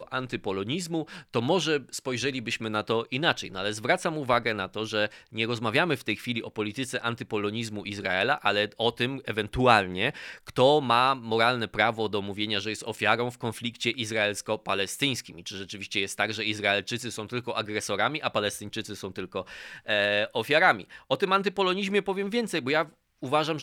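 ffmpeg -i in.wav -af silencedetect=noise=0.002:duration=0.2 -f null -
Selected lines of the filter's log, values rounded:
silence_start: 22.94
silence_end: 23.22 | silence_duration: 0.28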